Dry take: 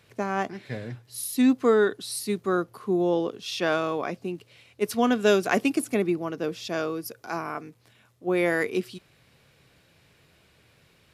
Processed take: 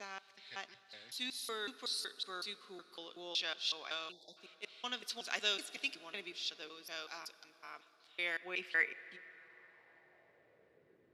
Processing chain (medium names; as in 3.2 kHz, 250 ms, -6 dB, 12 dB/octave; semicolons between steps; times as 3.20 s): slices played last to first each 186 ms, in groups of 2; band-pass sweep 3.9 kHz -> 360 Hz, 8.06–11.03 s; plate-style reverb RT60 5 s, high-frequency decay 0.55×, DRR 15.5 dB; spectral selection erased 4.12–4.37 s, 960–3400 Hz; trim +1 dB